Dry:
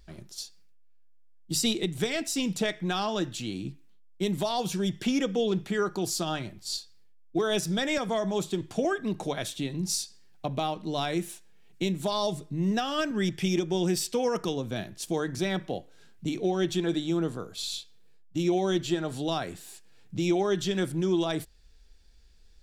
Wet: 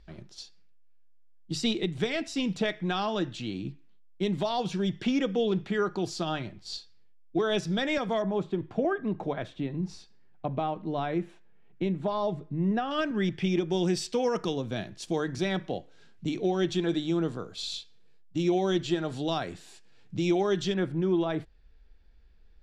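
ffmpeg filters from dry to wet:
-af "asetnsamples=n=441:p=0,asendcmd='8.22 lowpass f 1800;12.91 lowpass f 3300;13.7 lowpass f 5700;20.74 lowpass f 2200',lowpass=4000"

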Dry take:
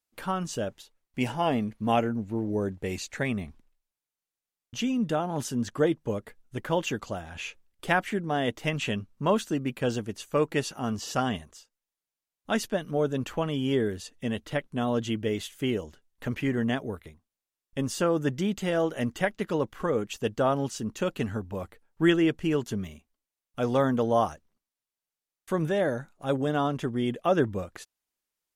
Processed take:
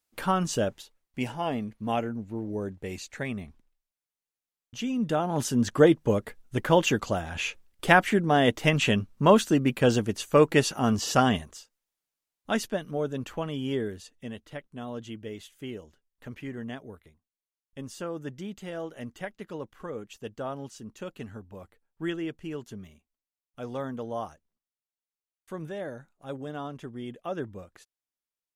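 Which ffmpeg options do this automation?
-af "volume=5.31,afade=t=out:st=0.62:d=0.67:silence=0.375837,afade=t=in:st=4.79:d=1:silence=0.316228,afade=t=out:st=11.11:d=1.88:silence=0.334965,afade=t=out:st=13.72:d=0.73:silence=0.473151"

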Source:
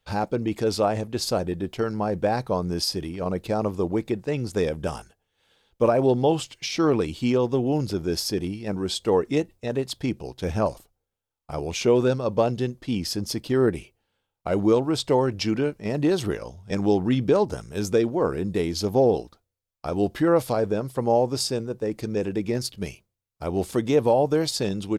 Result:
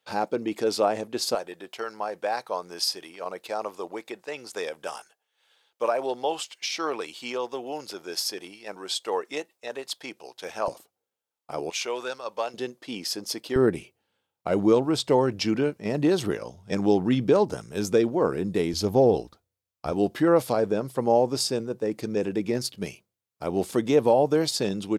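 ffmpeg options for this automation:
-af "asetnsamples=n=441:p=0,asendcmd='1.35 highpass f 690;10.68 highpass f 270;11.7 highpass f 910;12.54 highpass f 410;13.56 highpass f 130;18.73 highpass f 59;19.92 highpass f 150',highpass=280"

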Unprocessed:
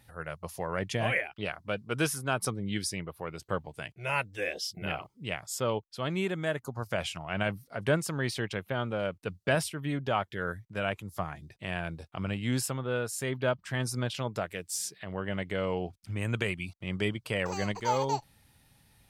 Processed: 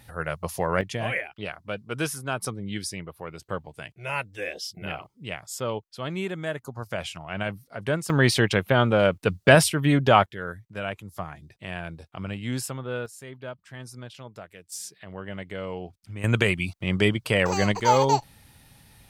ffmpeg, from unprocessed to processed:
-af "asetnsamples=n=441:p=0,asendcmd='0.81 volume volume 0.5dB;8.1 volume volume 12dB;10.26 volume volume 0dB;13.06 volume volume -9dB;14.72 volume volume -2.5dB;16.24 volume volume 9dB',volume=2.66"

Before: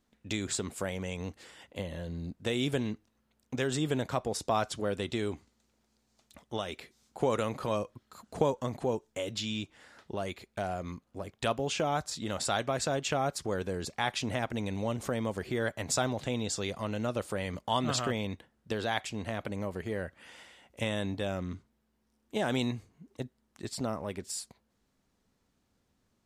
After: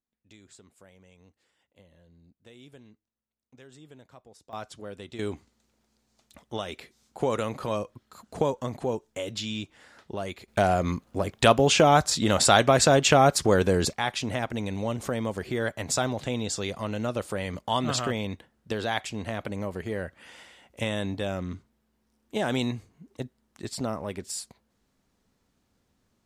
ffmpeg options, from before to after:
-af "asetnsamples=n=441:p=0,asendcmd='4.53 volume volume -8dB;5.19 volume volume 2dB;10.48 volume volume 12dB;13.93 volume volume 3dB',volume=0.1"

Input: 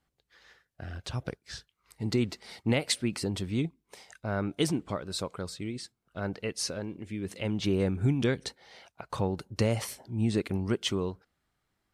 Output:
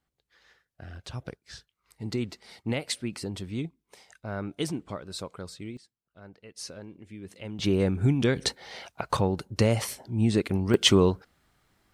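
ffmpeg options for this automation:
-af "asetnsamples=n=441:p=0,asendcmd='5.77 volume volume -15dB;6.56 volume volume -7dB;7.59 volume volume 3dB;8.36 volume volume 10dB;9.17 volume volume 4dB;10.74 volume volume 11dB',volume=0.708"

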